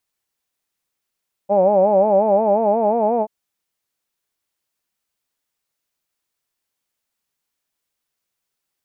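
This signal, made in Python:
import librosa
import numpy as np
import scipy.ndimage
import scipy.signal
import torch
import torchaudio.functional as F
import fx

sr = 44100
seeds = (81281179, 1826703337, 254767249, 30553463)

y = fx.vowel(sr, seeds[0], length_s=1.78, word='hawed', hz=192.0, glide_st=3.0, vibrato_hz=5.6, vibrato_st=1.2)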